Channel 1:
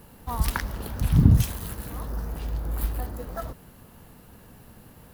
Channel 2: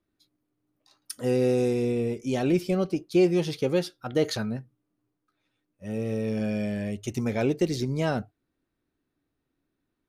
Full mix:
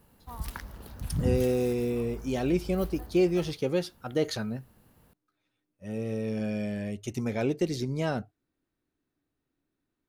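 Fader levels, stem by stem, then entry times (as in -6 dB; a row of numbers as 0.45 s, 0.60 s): -11.5 dB, -3.0 dB; 0.00 s, 0.00 s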